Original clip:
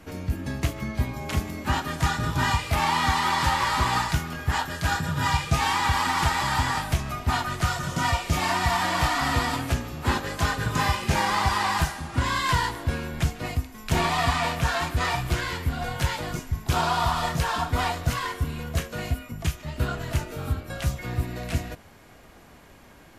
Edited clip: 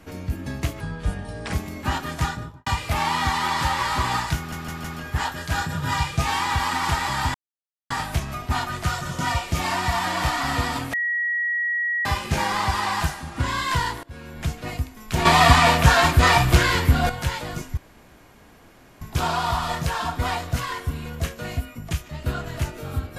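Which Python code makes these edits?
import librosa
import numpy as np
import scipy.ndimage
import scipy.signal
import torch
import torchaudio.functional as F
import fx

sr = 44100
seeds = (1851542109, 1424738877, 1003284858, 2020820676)

y = fx.studio_fade_out(x, sr, start_s=2.0, length_s=0.48)
y = fx.edit(y, sr, fx.speed_span(start_s=0.8, length_s=0.55, speed=0.75),
    fx.stutter(start_s=4.18, slice_s=0.16, count=4),
    fx.insert_silence(at_s=6.68, length_s=0.56),
    fx.bleep(start_s=9.71, length_s=1.12, hz=1910.0, db=-21.0),
    fx.fade_in_from(start_s=12.81, length_s=0.55, floor_db=-23.5),
    fx.clip_gain(start_s=14.03, length_s=1.84, db=9.5),
    fx.insert_room_tone(at_s=16.55, length_s=1.24), tone=tone)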